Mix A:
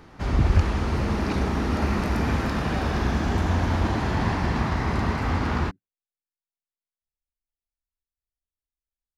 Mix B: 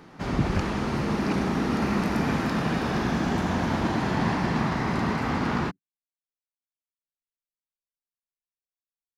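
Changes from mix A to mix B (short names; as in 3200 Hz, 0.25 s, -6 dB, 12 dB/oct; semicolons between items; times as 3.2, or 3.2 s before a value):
speech -10.5 dB; master: add resonant low shelf 110 Hz -10 dB, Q 1.5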